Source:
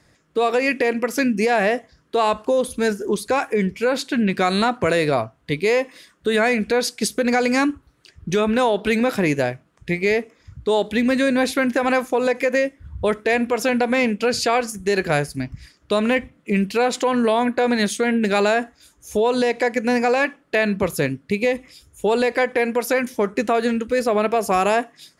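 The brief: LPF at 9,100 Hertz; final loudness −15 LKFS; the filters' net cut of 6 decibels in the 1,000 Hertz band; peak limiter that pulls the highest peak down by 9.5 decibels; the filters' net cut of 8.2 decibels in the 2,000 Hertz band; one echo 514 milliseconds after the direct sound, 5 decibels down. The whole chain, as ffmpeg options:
ffmpeg -i in.wav -af "lowpass=9100,equalizer=frequency=1000:width_type=o:gain=-7.5,equalizer=frequency=2000:width_type=o:gain=-8,alimiter=limit=-19.5dB:level=0:latency=1,aecho=1:1:514:0.562,volume=12.5dB" out.wav

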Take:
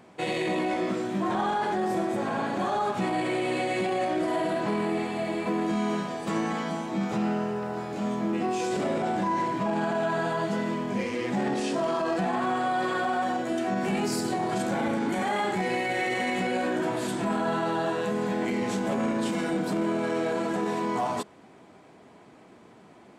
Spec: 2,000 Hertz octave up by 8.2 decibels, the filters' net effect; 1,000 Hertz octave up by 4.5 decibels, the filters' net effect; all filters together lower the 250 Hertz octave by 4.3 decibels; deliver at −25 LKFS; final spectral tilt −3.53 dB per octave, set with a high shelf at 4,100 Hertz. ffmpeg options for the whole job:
ffmpeg -i in.wav -af "equalizer=frequency=250:width_type=o:gain=-6.5,equalizer=frequency=1000:width_type=o:gain=4.5,equalizer=frequency=2000:width_type=o:gain=7.5,highshelf=frequency=4100:gain=6.5,volume=0.5dB" out.wav

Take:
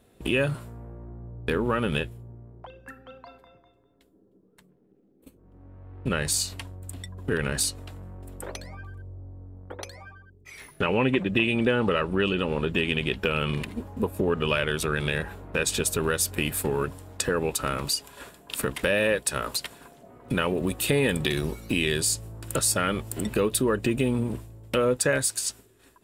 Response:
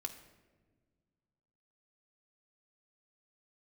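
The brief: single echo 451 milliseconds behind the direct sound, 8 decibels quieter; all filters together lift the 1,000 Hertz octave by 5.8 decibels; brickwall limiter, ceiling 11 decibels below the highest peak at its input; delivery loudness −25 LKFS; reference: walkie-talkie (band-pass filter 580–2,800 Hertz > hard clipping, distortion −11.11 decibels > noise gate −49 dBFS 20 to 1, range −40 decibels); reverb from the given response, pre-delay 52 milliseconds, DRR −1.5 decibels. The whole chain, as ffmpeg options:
-filter_complex "[0:a]equalizer=frequency=1000:width_type=o:gain=8.5,alimiter=limit=-17dB:level=0:latency=1,aecho=1:1:451:0.398,asplit=2[link_01][link_02];[1:a]atrim=start_sample=2205,adelay=52[link_03];[link_02][link_03]afir=irnorm=-1:irlink=0,volume=3dB[link_04];[link_01][link_04]amix=inputs=2:normalize=0,highpass=580,lowpass=2800,asoftclip=type=hard:threshold=-26.5dB,agate=range=-40dB:threshold=-49dB:ratio=20,volume=7.5dB"

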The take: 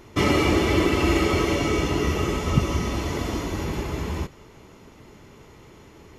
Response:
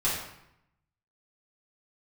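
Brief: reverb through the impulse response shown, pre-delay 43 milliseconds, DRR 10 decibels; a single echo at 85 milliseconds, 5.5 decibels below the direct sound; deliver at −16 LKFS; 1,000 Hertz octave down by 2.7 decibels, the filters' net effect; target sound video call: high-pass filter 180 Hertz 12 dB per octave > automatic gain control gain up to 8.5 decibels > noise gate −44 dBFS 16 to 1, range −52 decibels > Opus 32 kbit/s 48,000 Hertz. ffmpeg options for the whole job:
-filter_complex "[0:a]equalizer=frequency=1000:width_type=o:gain=-3.5,aecho=1:1:85:0.531,asplit=2[link_01][link_02];[1:a]atrim=start_sample=2205,adelay=43[link_03];[link_02][link_03]afir=irnorm=-1:irlink=0,volume=-20dB[link_04];[link_01][link_04]amix=inputs=2:normalize=0,highpass=180,dynaudnorm=maxgain=8.5dB,agate=range=-52dB:threshold=-44dB:ratio=16,volume=7.5dB" -ar 48000 -c:a libopus -b:a 32k

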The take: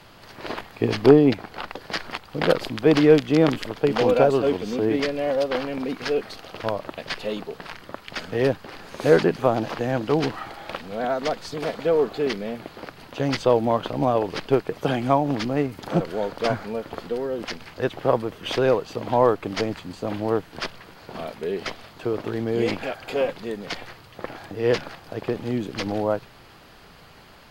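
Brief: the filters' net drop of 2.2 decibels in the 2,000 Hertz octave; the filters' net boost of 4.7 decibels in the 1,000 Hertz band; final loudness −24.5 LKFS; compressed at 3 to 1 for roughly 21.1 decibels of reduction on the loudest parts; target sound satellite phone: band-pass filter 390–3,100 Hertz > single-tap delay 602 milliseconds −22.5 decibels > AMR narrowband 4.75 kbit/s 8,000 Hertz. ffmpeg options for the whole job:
ffmpeg -i in.wav -af "equalizer=frequency=1000:width_type=o:gain=7.5,equalizer=frequency=2000:width_type=o:gain=-5,acompressor=threshold=-38dB:ratio=3,highpass=390,lowpass=3100,aecho=1:1:602:0.075,volume=18dB" -ar 8000 -c:a libopencore_amrnb -b:a 4750 out.amr

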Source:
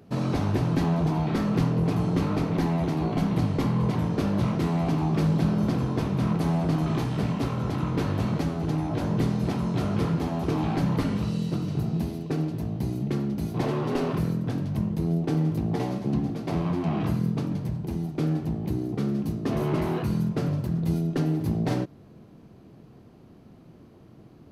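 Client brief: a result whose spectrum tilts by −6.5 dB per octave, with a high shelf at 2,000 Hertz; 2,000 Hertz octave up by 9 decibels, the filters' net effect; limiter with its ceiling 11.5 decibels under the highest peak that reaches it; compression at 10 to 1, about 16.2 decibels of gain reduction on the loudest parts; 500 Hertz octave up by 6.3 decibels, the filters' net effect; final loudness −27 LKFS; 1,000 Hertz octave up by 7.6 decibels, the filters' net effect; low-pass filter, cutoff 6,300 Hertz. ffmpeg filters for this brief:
ffmpeg -i in.wav -af "lowpass=6300,equalizer=frequency=500:width_type=o:gain=6.5,equalizer=frequency=1000:width_type=o:gain=4.5,highshelf=frequency=2000:gain=8.5,equalizer=frequency=2000:width_type=o:gain=4.5,acompressor=threshold=-35dB:ratio=10,volume=15.5dB,alimiter=limit=-18dB:level=0:latency=1" out.wav

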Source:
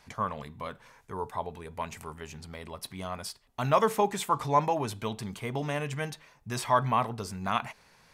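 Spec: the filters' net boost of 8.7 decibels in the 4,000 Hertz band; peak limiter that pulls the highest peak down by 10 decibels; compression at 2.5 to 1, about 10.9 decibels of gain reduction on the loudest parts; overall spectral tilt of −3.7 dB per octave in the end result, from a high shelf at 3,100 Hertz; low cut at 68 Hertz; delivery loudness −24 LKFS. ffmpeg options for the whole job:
ffmpeg -i in.wav -af "highpass=68,highshelf=frequency=3100:gain=8.5,equalizer=frequency=4000:width_type=o:gain=4.5,acompressor=threshold=-34dB:ratio=2.5,volume=15.5dB,alimiter=limit=-12dB:level=0:latency=1" out.wav

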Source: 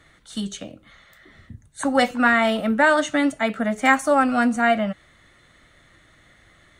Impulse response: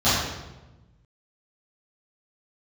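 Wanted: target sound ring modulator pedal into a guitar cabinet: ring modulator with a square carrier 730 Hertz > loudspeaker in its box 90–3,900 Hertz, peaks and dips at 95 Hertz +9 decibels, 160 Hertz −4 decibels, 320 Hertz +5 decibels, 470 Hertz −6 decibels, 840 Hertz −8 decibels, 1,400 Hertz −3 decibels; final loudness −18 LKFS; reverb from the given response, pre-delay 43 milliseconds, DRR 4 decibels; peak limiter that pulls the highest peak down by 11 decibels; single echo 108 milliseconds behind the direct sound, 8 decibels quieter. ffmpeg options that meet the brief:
-filter_complex "[0:a]alimiter=limit=-14.5dB:level=0:latency=1,aecho=1:1:108:0.398,asplit=2[link_01][link_02];[1:a]atrim=start_sample=2205,adelay=43[link_03];[link_02][link_03]afir=irnorm=-1:irlink=0,volume=-23.5dB[link_04];[link_01][link_04]amix=inputs=2:normalize=0,aeval=exprs='val(0)*sgn(sin(2*PI*730*n/s))':channel_layout=same,highpass=90,equalizer=frequency=95:width_type=q:width=4:gain=9,equalizer=frequency=160:width_type=q:width=4:gain=-4,equalizer=frequency=320:width_type=q:width=4:gain=5,equalizer=frequency=470:width_type=q:width=4:gain=-6,equalizer=frequency=840:width_type=q:width=4:gain=-8,equalizer=frequency=1400:width_type=q:width=4:gain=-3,lowpass=frequency=3900:width=0.5412,lowpass=frequency=3900:width=1.3066,volume=4.5dB"

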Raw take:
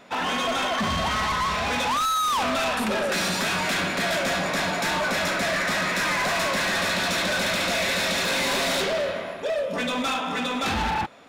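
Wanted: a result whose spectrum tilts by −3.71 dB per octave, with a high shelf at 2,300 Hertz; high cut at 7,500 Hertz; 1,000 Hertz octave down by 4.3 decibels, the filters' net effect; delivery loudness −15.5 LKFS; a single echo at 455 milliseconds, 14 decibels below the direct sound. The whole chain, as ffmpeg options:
ffmpeg -i in.wav -af "lowpass=7500,equalizer=frequency=1000:width_type=o:gain=-4.5,highshelf=frequency=2300:gain=-5,aecho=1:1:455:0.2,volume=11.5dB" out.wav

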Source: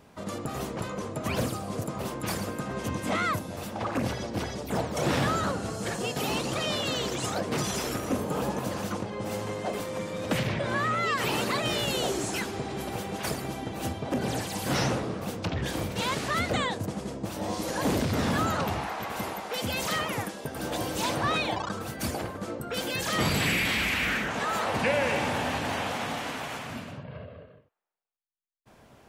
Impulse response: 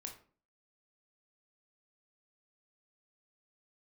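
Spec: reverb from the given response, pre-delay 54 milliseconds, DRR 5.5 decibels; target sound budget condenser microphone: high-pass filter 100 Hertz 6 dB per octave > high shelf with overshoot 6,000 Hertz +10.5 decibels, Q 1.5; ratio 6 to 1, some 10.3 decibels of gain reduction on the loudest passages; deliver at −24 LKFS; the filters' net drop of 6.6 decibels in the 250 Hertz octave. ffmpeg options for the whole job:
-filter_complex "[0:a]equalizer=frequency=250:width_type=o:gain=-8,acompressor=threshold=-35dB:ratio=6,asplit=2[link_01][link_02];[1:a]atrim=start_sample=2205,adelay=54[link_03];[link_02][link_03]afir=irnorm=-1:irlink=0,volume=-1.5dB[link_04];[link_01][link_04]amix=inputs=2:normalize=0,highpass=frequency=100:poles=1,highshelf=frequency=6000:width_type=q:width=1.5:gain=10.5,volume=10.5dB"

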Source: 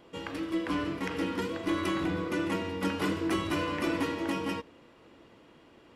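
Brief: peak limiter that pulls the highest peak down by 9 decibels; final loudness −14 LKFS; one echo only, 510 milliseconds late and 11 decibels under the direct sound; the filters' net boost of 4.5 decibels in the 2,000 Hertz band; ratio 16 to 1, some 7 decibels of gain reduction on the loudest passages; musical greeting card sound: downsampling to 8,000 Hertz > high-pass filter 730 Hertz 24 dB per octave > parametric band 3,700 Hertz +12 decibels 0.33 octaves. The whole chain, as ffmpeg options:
ffmpeg -i in.wav -af "equalizer=frequency=2000:width_type=o:gain=5,acompressor=threshold=-32dB:ratio=16,alimiter=level_in=5.5dB:limit=-24dB:level=0:latency=1,volume=-5.5dB,aecho=1:1:510:0.282,aresample=8000,aresample=44100,highpass=frequency=730:width=0.5412,highpass=frequency=730:width=1.3066,equalizer=frequency=3700:width_type=o:width=0.33:gain=12,volume=27dB" out.wav

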